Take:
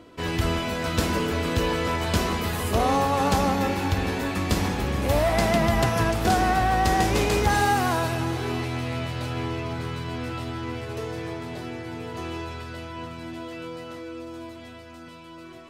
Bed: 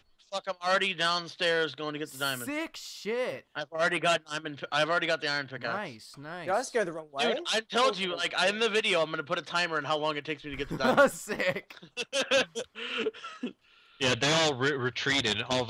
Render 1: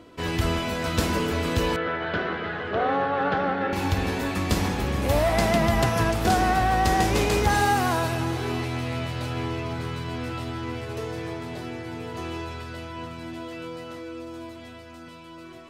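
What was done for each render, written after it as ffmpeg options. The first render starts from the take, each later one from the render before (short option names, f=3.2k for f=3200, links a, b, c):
-filter_complex "[0:a]asettb=1/sr,asplit=3[a][b][c];[a]atrim=end=1.764[d];[b]atrim=start=1.76:end=3.73,asetpts=PTS-STARTPTS,afade=t=in:d=0.004:c=qsin,afade=t=out:st=1.966:d=0.004:c=qsin,highpass=180,equalizer=f=230:t=q:w=4:g=-10,equalizer=f=1k:t=q:w=4:g=-8,equalizer=f=1.5k:t=q:w=4:g=9,equalizer=f=2.5k:t=q:w=4:g=-7,lowpass=f=3k:w=0.5412,lowpass=f=3k:w=1.3066[e];[c]atrim=start=3.726[f];[d][e]acrossfade=d=0.004:c1=hsin:c2=qsin[g];[g][f]acrossfade=d=0.004:c1=qsin:c2=hsin"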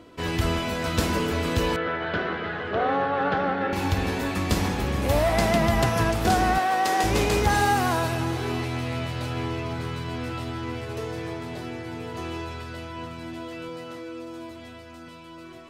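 -filter_complex "[0:a]asettb=1/sr,asplit=3[a][b][c];[a]atrim=end=6.584[d];[b]atrim=start=6.58:end=7.04,asetpts=PTS-STARTPTS,afade=t=in:d=0.004:c=qsin,afade=t=out:st=0.456:d=0.004:c=qsin,highpass=360[e];[c]atrim=start=7.036[f];[d][e]acrossfade=d=0.004:c1=hsin:c2=qsin[g];[g][f]acrossfade=d=0.004:c1=qsin:c2=hsin,asettb=1/sr,asplit=3[h][i][j];[h]atrim=end=13.694[k];[i]atrim=start=13.69:end=14.51,asetpts=PTS-STARTPTS,afade=t=in:d=0.004:c=qsin,afade=t=out:st=0.816:d=0.004:c=qsin,highpass=f=100:w=0.5412,highpass=f=100:w=1.3066[l];[j]atrim=start=14.506[m];[k][l]acrossfade=d=0.004:c1=hsin:c2=qsin[n];[n][m]acrossfade=d=0.004:c1=qsin:c2=hsin"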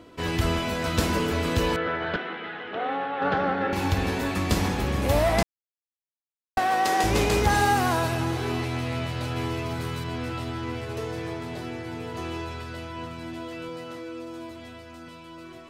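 -filter_complex "[0:a]asettb=1/sr,asplit=3[a][b][c];[a]atrim=end=2.164[d];[b]atrim=start=2.16:end=3.22,asetpts=PTS-STARTPTS,afade=t=in:d=0.004:c=qsin,afade=t=out:st=1.056:d=0.004:c=qsin,highpass=300,equalizer=f=400:t=q:w=4:g=-8,equalizer=f=610:t=q:w=4:g=-9,equalizer=f=1.1k:t=q:w=4:g=-7,equalizer=f=1.6k:t=q:w=4:g=-5,equalizer=f=4.6k:t=q:w=4:g=-8,lowpass=f=5k:w=0.5412,lowpass=f=5k:w=1.3066[e];[c]atrim=start=3.216[f];[d][e]acrossfade=d=0.004:c1=hsin:c2=qsin[g];[g][f]acrossfade=d=0.004:c1=qsin:c2=hsin,asettb=1/sr,asplit=3[h][i][j];[h]atrim=end=9.364[k];[i]atrim=start=9.36:end=10.04,asetpts=PTS-STARTPTS,afade=t=in:d=0.004:c=qsin,afade=t=out:st=0.676:d=0.004:c=qsin,highshelf=f=8.8k:g=11.5[l];[j]atrim=start=10.036[m];[k][l]acrossfade=d=0.004:c1=hsin:c2=qsin[n];[n][m]acrossfade=d=0.004:c1=qsin:c2=hsin,asplit=3[o][p][q];[o]atrim=end=5.43,asetpts=PTS-STARTPTS,afade=t=out:st=5.426:d=0.004:c=hsin[r];[p]atrim=start=5.43:end=6.57,asetpts=PTS-STARTPTS,volume=0[s];[q]atrim=start=6.57,asetpts=PTS-STARTPTS,afade=t=in:d=0.004:c=hsin[t];[r][s][t]concat=n=3:v=0:a=1"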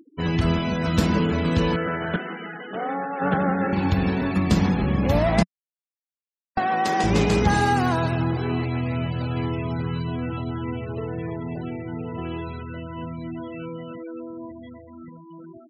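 -af "afftfilt=real='re*gte(hypot(re,im),0.0224)':imag='im*gte(hypot(re,im),0.0224)':win_size=1024:overlap=0.75,equalizer=f=180:t=o:w=0.94:g=10.5"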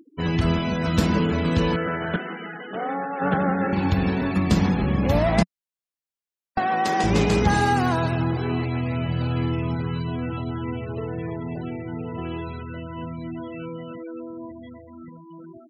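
-filter_complex "[0:a]asettb=1/sr,asplit=3[a][b][c];[a]atrim=end=9.044[d];[b]atrim=start=9.04:end=9.75,asetpts=PTS-STARTPTS,afade=t=in:d=0.004:c=qsin,afade=t=out:st=0.706:d=0.004:c=qsin,asplit=2[e][f];[f]adelay=49,volume=-7dB[g];[e][g]amix=inputs=2:normalize=0,atrim=end_sample=31311[h];[c]atrim=start=9.746[i];[d][h]acrossfade=d=0.004:c1=hsin:c2=qsin[j];[j][i]acrossfade=d=0.004:c1=qsin:c2=hsin"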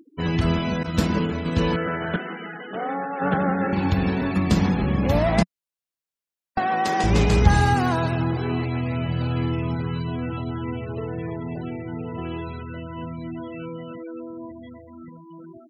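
-filter_complex "[0:a]asettb=1/sr,asplit=3[a][b][c];[a]atrim=end=0.834[d];[b]atrim=start=0.83:end=1.57,asetpts=PTS-STARTPTS,afade=t=in:d=0.004:c=qsin,afade=t=out:st=0.736:d=0.004:c=qsin,agate=range=-33dB:threshold=-19dB:ratio=3:release=100:detection=peak[e];[c]atrim=start=1.566[f];[d][e]acrossfade=d=0.004:c1=hsin:c2=qsin[g];[g][f]acrossfade=d=0.004:c1=qsin:c2=hsin,asettb=1/sr,asplit=3[h][i][j];[h]atrim=end=6.704[k];[i]atrim=start=6.7:end=7.75,asetpts=PTS-STARTPTS,afade=t=in:d=0.004:c=qsin,afade=t=out:st=1.046:d=0.004:c=qsin,asubboost=boost=11:cutoff=120[l];[j]atrim=start=7.746[m];[k][l]acrossfade=d=0.004:c1=hsin:c2=qsin[n];[n][m]acrossfade=d=0.004:c1=qsin:c2=hsin"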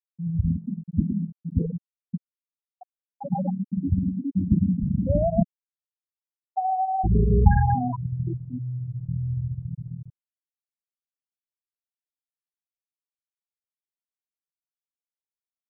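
-af "afftfilt=real='re*gte(hypot(re,im),0.501)':imag='im*gte(hypot(re,im),0.501)':win_size=1024:overlap=0.75,lowpass=f=2.2k:w=0.5412,lowpass=f=2.2k:w=1.3066"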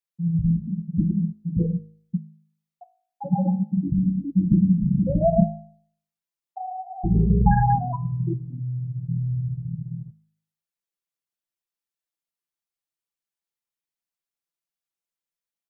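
-af "aecho=1:1:5.9:0.93,bandreject=f=52.81:t=h:w=4,bandreject=f=105.62:t=h:w=4,bandreject=f=158.43:t=h:w=4,bandreject=f=211.24:t=h:w=4,bandreject=f=264.05:t=h:w=4,bandreject=f=316.86:t=h:w=4,bandreject=f=369.67:t=h:w=4,bandreject=f=422.48:t=h:w=4,bandreject=f=475.29:t=h:w=4,bandreject=f=528.1:t=h:w=4,bandreject=f=580.91:t=h:w=4,bandreject=f=633.72:t=h:w=4,bandreject=f=686.53:t=h:w=4,bandreject=f=739.34:t=h:w=4,bandreject=f=792.15:t=h:w=4,bandreject=f=844.96:t=h:w=4,bandreject=f=897.77:t=h:w=4,bandreject=f=950.58:t=h:w=4,bandreject=f=1.00339k:t=h:w=4,bandreject=f=1.0562k:t=h:w=4,bandreject=f=1.10901k:t=h:w=4,bandreject=f=1.16182k:t=h:w=4,bandreject=f=1.21463k:t=h:w=4,bandreject=f=1.26744k:t=h:w=4,bandreject=f=1.32025k:t=h:w=4,bandreject=f=1.37306k:t=h:w=4,bandreject=f=1.42587k:t=h:w=4,bandreject=f=1.47868k:t=h:w=4,bandreject=f=1.53149k:t=h:w=4,bandreject=f=1.5843k:t=h:w=4"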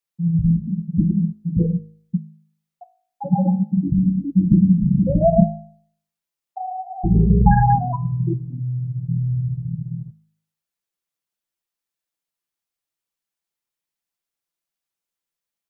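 -af "volume=4dB"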